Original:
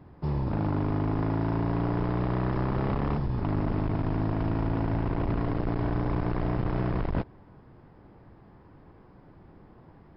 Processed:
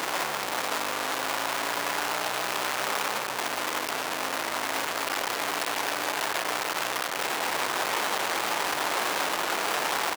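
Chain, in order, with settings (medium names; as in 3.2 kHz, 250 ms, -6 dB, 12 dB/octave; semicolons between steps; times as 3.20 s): one-bit comparator; high-pass 720 Hz 12 dB/octave; speakerphone echo 140 ms, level -7 dB; trim +6.5 dB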